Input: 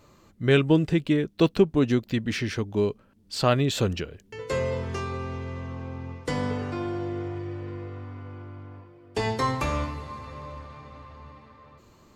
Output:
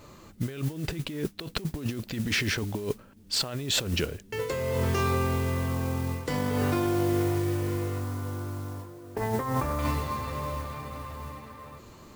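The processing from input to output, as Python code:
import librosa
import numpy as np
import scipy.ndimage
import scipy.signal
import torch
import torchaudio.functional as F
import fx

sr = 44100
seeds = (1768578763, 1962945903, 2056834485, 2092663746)

y = fx.lowpass(x, sr, hz=1800.0, slope=24, at=(8.0, 9.79))
y = fx.over_compress(y, sr, threshold_db=-31.0, ratio=-1.0)
y = fx.mod_noise(y, sr, seeds[0], snr_db=18)
y = y * librosa.db_to_amplitude(2.0)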